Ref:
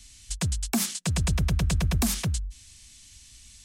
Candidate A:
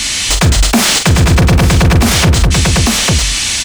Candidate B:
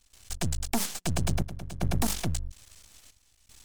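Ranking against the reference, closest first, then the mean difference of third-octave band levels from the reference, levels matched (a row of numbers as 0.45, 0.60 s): B, A; 5.5, 13.5 dB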